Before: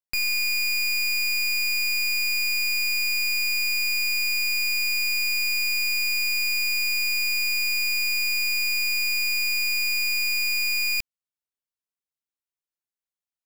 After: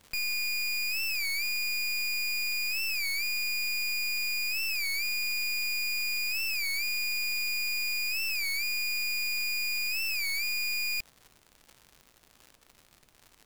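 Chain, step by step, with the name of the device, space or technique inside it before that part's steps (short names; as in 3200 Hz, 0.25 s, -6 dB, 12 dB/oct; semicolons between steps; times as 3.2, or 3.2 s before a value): warped LP (record warp 33 1/3 rpm, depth 160 cents; crackle 130/s -33 dBFS; pink noise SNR 35 dB); gain -6.5 dB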